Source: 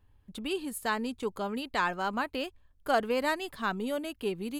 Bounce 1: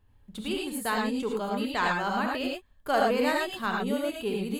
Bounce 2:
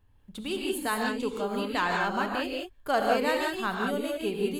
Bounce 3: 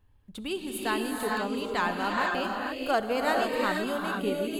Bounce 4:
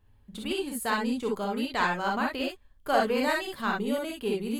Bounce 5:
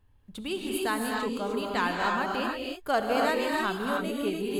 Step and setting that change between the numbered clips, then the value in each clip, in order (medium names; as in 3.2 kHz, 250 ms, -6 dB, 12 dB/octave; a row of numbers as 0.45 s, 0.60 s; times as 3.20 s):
gated-style reverb, gate: 130 ms, 210 ms, 510 ms, 80 ms, 330 ms